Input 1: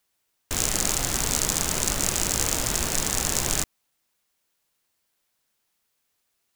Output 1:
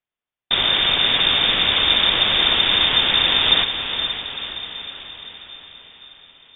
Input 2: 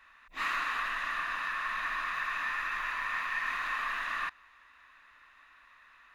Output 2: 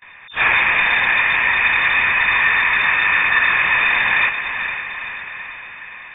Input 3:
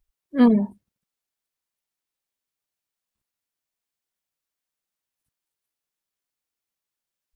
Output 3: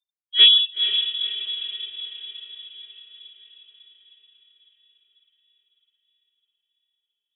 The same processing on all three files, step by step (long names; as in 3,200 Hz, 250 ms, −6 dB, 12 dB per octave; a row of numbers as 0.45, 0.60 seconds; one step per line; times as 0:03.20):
noise gate with hold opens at −52 dBFS
feedback delay with all-pass diffusion 487 ms, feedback 56%, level −8 dB
voice inversion scrambler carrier 3,600 Hz
normalise the peak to −3 dBFS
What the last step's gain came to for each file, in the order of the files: +10.0, +17.0, +2.0 decibels